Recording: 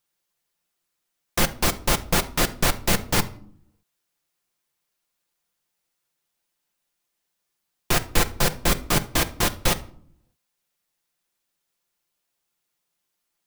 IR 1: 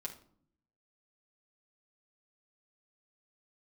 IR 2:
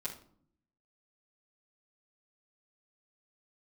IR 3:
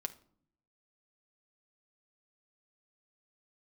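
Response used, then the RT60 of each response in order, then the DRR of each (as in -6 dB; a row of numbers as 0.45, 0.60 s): 3; 0.55, 0.55, 0.55 s; -1.5, -9.0, 7.0 dB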